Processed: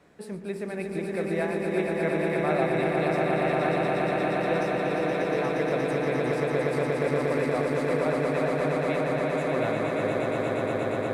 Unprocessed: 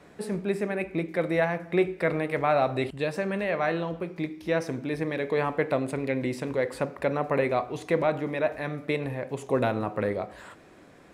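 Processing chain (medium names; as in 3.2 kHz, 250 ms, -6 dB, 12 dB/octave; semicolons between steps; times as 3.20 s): echo with a slow build-up 118 ms, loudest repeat 8, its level -4.5 dB; trim -6 dB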